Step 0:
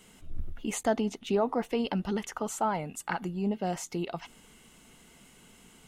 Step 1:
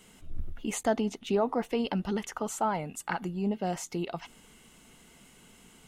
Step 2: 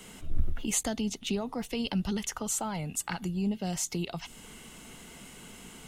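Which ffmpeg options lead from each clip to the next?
-af anull
-filter_complex "[0:a]acrossover=split=160|3000[s0][s1][s2];[s1]acompressor=threshold=0.00398:ratio=3[s3];[s0][s3][s2]amix=inputs=3:normalize=0,volume=2.51"

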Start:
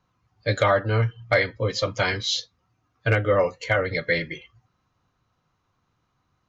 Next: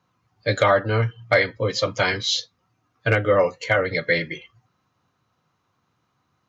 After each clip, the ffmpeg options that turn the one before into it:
-af "highpass=110,volume=1.33"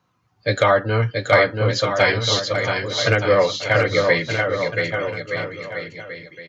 -af "aecho=1:1:680|1224|1659|2007|2286:0.631|0.398|0.251|0.158|0.1,volume=1.19"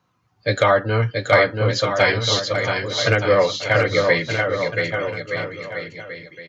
-af anull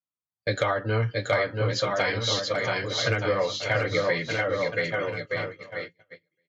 -af "agate=range=0.0224:threshold=0.0316:ratio=16:detection=peak,acompressor=threshold=0.141:ratio=4,flanger=delay=3.6:depth=5.6:regen=-55:speed=0.44:shape=sinusoidal"

